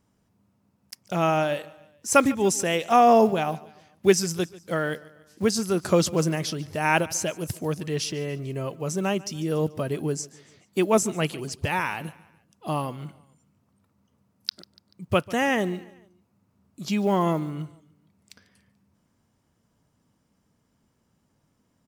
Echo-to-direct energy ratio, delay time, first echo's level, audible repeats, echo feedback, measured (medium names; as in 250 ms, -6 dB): -20.0 dB, 145 ms, -21.0 dB, 3, 48%